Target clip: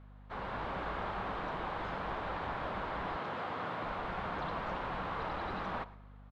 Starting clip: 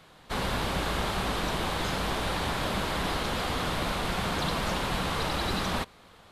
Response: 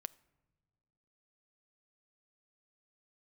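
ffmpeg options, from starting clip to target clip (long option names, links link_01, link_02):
-filter_complex "[0:a]tiltshelf=frequency=700:gain=-8[link_01];[1:a]atrim=start_sample=2205[link_02];[link_01][link_02]afir=irnorm=-1:irlink=0,dynaudnorm=framelen=100:gausssize=9:maxgain=4dB,lowpass=1100,aecho=1:1:115:0.0891,aeval=exprs='val(0)+0.00447*(sin(2*PI*50*n/s)+sin(2*PI*2*50*n/s)/2+sin(2*PI*3*50*n/s)/3+sin(2*PI*4*50*n/s)/4+sin(2*PI*5*50*n/s)/5)':channel_layout=same,asettb=1/sr,asplit=3[link_03][link_04][link_05];[link_03]atrim=end=3.164[link_06];[link_04]atrim=start=3.16:end=3.84,asetpts=PTS-STARTPTS,afade=type=in:duration=0.004:curve=qsin,afade=type=out:start_time=0.676:duration=0.004:curve=qsin,highpass=frequency=96:width=0.5412,highpass=frequency=96:width=1.3066[link_07];[link_05]atrim=start=3.836[link_08];[link_06][link_07]acrossfade=duration=0.004:curve1=hsin:curve2=qsin[link_09];[link_09][link_08]acrossfade=duration=0.004:curve1=qsin:curve2=hsin,volume=-5.5dB"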